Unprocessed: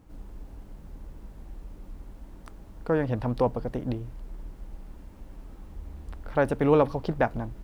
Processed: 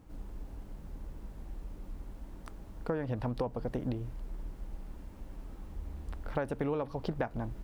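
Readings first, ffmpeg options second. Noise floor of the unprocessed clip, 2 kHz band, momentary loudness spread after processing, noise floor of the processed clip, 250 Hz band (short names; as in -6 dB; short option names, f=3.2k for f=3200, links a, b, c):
-47 dBFS, -9.5 dB, 15 LU, -49 dBFS, -8.0 dB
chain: -af "acompressor=threshold=-28dB:ratio=16,volume=-1dB"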